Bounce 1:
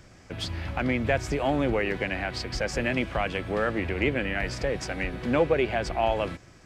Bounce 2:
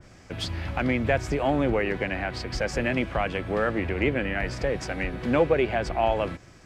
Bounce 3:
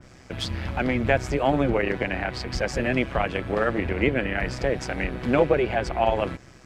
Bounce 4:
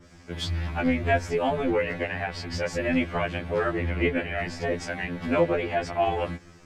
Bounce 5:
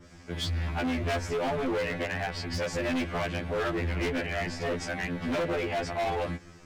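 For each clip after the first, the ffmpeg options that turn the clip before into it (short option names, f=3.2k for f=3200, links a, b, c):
-af "adynamicequalizer=threshold=0.01:dfrequency=2400:dqfactor=0.7:tfrequency=2400:tqfactor=0.7:attack=5:release=100:ratio=0.375:range=2.5:mode=cutabove:tftype=highshelf,volume=1.5dB"
-af "tremolo=f=130:d=0.667,volume=4.5dB"
-af "afftfilt=real='re*2*eq(mod(b,4),0)':imag='im*2*eq(mod(b,4),0)':win_size=2048:overlap=0.75"
-af "asoftclip=type=hard:threshold=-26.5dB"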